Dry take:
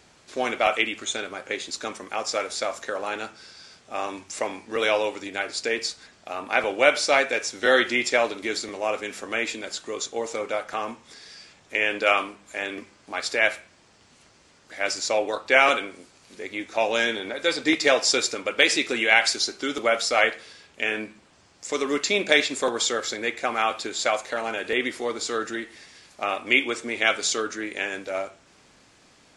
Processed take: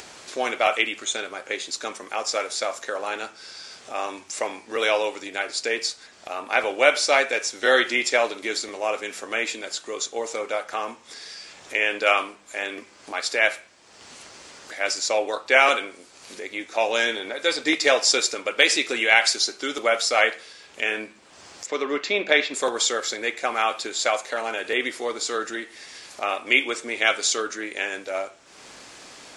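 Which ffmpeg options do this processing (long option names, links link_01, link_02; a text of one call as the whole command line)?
ffmpeg -i in.wav -filter_complex "[0:a]asettb=1/sr,asplit=3[link_01][link_02][link_03];[link_01]atrim=end=21.664[link_04];[link_02]atrim=start=21.66:end=22.54,asetpts=PTS-STARTPTS,afade=type=in:duration=0.004:curve=qsin,afade=type=out:start_time=0.876:duration=0.004:curve=qsin,highpass=100,lowpass=3300[link_05];[link_03]atrim=start=22.536[link_06];[link_04][link_05]acrossfade=duration=0.004:curve1=hsin:curve2=qsin[link_07];[link_07][link_06]acrossfade=duration=0.004:curve1=qsin:curve2=hsin,bass=frequency=250:gain=-10,treble=frequency=4000:gain=2,acompressor=mode=upward:threshold=-34dB:ratio=2.5,volume=1dB" out.wav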